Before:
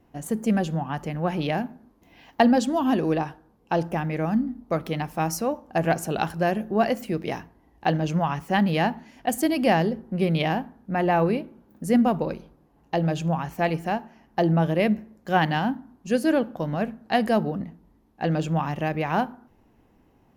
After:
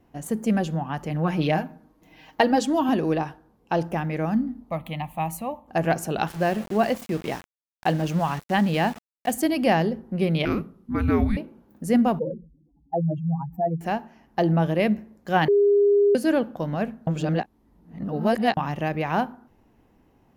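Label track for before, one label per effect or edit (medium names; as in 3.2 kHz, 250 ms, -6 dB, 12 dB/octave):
1.100000	2.890000	comb 6.4 ms
4.700000	5.680000	static phaser centre 1.5 kHz, stages 6
6.280000	9.320000	small samples zeroed under -35.5 dBFS
10.450000	11.370000	frequency shift -430 Hz
12.190000	13.810000	spectral contrast enhancement exponent 3.4
15.480000	16.150000	bleep 406 Hz -14.5 dBFS
17.070000	18.570000	reverse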